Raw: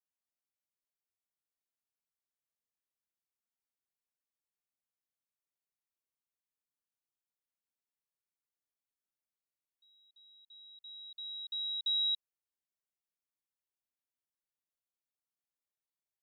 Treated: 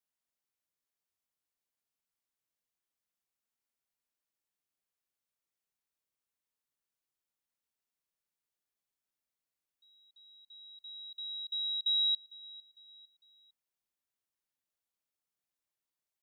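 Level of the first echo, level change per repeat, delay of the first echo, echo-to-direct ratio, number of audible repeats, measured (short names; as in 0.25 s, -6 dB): -22.0 dB, -7.0 dB, 0.453 s, -21.0 dB, 2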